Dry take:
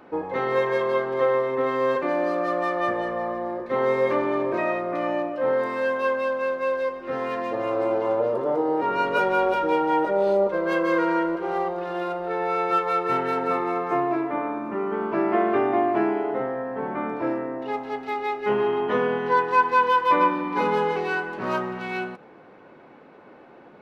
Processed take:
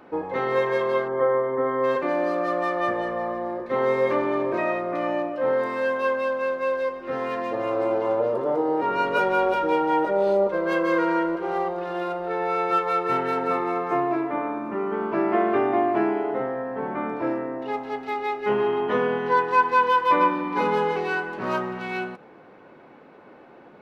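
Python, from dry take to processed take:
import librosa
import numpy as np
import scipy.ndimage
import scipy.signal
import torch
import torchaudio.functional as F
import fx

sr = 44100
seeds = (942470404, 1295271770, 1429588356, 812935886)

y = fx.savgol(x, sr, points=41, at=(1.07, 1.83), fade=0.02)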